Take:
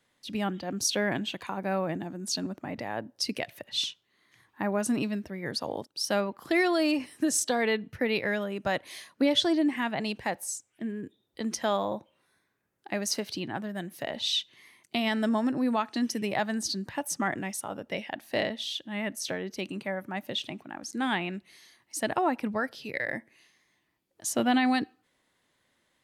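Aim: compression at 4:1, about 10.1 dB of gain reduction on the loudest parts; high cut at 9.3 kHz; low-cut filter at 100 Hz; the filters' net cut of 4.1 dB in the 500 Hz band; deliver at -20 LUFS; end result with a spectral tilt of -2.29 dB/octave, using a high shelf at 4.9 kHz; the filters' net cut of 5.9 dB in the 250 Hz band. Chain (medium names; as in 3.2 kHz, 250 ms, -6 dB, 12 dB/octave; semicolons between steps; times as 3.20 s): high-pass 100 Hz; low-pass 9.3 kHz; peaking EQ 250 Hz -6 dB; peaking EQ 500 Hz -4 dB; treble shelf 4.9 kHz +4 dB; compression 4:1, threshold -32 dBFS; trim +16.5 dB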